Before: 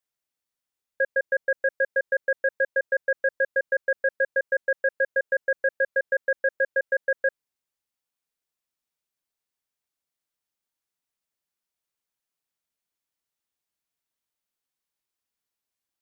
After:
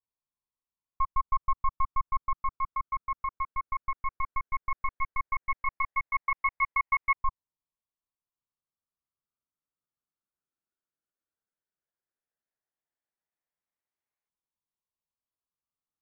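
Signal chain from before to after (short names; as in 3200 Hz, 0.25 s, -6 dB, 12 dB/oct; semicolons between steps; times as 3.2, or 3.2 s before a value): LFO low-pass saw up 0.14 Hz 480–1600 Hz; ring modulator 540 Hz; gain -3.5 dB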